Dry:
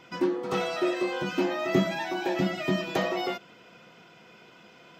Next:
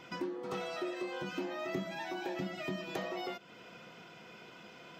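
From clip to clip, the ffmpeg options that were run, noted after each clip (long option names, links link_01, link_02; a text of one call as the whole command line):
ffmpeg -i in.wav -af "acompressor=threshold=-41dB:ratio=2.5" out.wav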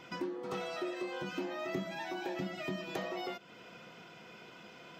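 ffmpeg -i in.wav -af anull out.wav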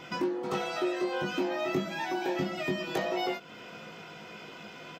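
ffmpeg -i in.wav -filter_complex "[0:a]asplit=2[link_01][link_02];[link_02]adelay=19,volume=-5dB[link_03];[link_01][link_03]amix=inputs=2:normalize=0,volume=6dB" out.wav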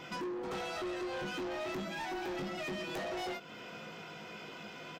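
ffmpeg -i in.wav -af "asoftclip=type=tanh:threshold=-34.5dB,volume=-1dB" out.wav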